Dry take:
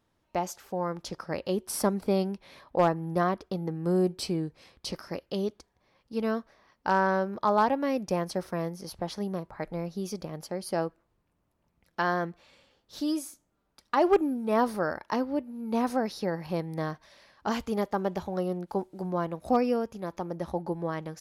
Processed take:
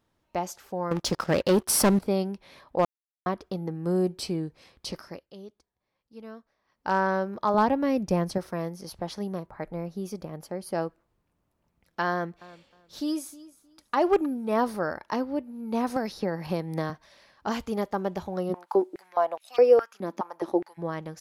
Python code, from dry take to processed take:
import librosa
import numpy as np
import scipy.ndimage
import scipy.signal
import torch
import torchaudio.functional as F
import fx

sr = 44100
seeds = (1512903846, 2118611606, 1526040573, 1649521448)

y = fx.leveller(x, sr, passes=3, at=(0.91, 1.99))
y = fx.low_shelf(y, sr, hz=220.0, db=11.0, at=(7.54, 8.38))
y = fx.peak_eq(y, sr, hz=4800.0, db=-6.0, octaves=1.8, at=(9.46, 10.75))
y = fx.echo_feedback(y, sr, ms=312, feedback_pct=21, wet_db=-19, at=(12.1, 14.26))
y = fx.band_squash(y, sr, depth_pct=100, at=(15.96, 16.9))
y = fx.filter_held_highpass(y, sr, hz=4.8, low_hz=240.0, high_hz=2800.0, at=(18.49, 20.77), fade=0.02)
y = fx.edit(y, sr, fx.silence(start_s=2.85, length_s=0.41),
    fx.fade_down_up(start_s=4.97, length_s=1.97, db=-14.0, fade_s=0.3), tone=tone)